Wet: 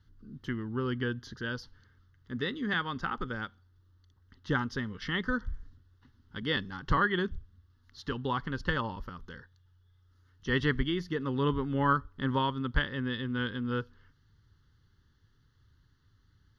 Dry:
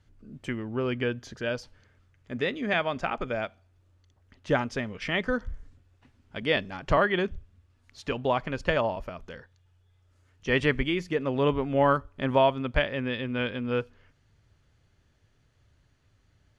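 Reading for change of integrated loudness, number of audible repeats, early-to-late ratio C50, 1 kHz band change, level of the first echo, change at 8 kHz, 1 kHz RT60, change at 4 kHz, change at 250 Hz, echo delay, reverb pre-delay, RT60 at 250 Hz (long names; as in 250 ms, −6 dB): −4.5 dB, no echo audible, no reverb audible, −3.5 dB, no echo audible, can't be measured, no reverb audible, −2.5 dB, −2.0 dB, no echo audible, no reverb audible, no reverb audible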